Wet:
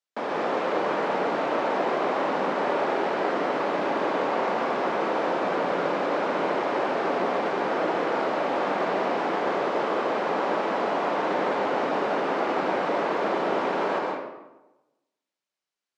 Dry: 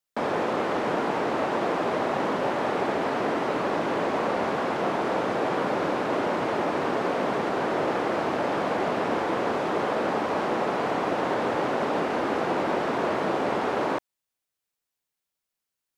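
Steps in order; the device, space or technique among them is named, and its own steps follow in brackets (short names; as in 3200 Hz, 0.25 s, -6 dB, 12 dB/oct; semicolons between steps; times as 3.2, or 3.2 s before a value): supermarket ceiling speaker (BPF 250–6200 Hz; reverb RT60 1.0 s, pre-delay 0.118 s, DRR -1 dB); gain -2.5 dB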